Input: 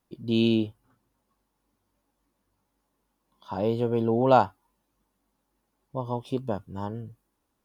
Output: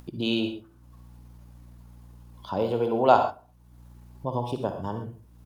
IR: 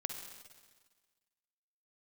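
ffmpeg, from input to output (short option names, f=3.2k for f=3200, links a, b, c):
-filter_complex "[0:a]acrossover=split=430[a][b];[a]acompressor=threshold=-32dB:ratio=6[c];[c][b]amix=inputs=2:normalize=0,aeval=exprs='val(0)+0.000631*(sin(2*PI*60*n/s)+sin(2*PI*2*60*n/s)/2+sin(2*PI*3*60*n/s)/3+sin(2*PI*4*60*n/s)/4+sin(2*PI*5*60*n/s)/5)':c=same,asplit=2[d][e];[e]adelay=84,lowpass=f=1.8k:p=1,volume=-18dB,asplit=2[f][g];[g]adelay=84,lowpass=f=1.8k:p=1,volume=0.46,asplit=2[h][i];[i]adelay=84,lowpass=f=1.8k:p=1,volume=0.46,asplit=2[j][k];[k]adelay=84,lowpass=f=1.8k:p=1,volume=0.46[l];[d][f][h][j][l]amix=inputs=5:normalize=0,atempo=1.4[m];[1:a]atrim=start_sample=2205,atrim=end_sample=6174[n];[m][n]afir=irnorm=-1:irlink=0,asplit=2[o][p];[p]acompressor=mode=upward:threshold=-35dB:ratio=2.5,volume=3dB[q];[o][q]amix=inputs=2:normalize=0,volume=-4dB"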